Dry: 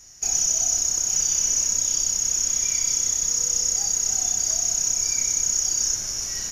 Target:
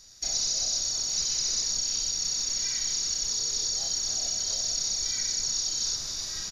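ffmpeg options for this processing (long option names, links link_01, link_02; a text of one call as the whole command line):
ffmpeg -i in.wav -filter_complex "[0:a]acrossover=split=8200[link_01][link_02];[link_02]acompressor=threshold=-42dB:ratio=4:attack=1:release=60[link_03];[link_01][link_03]amix=inputs=2:normalize=0,asplit=3[link_04][link_05][link_06];[link_05]asetrate=29433,aresample=44100,atempo=1.49831,volume=-6dB[link_07];[link_06]asetrate=37084,aresample=44100,atempo=1.18921,volume=0dB[link_08];[link_04][link_07][link_08]amix=inputs=3:normalize=0,volume=-8dB" out.wav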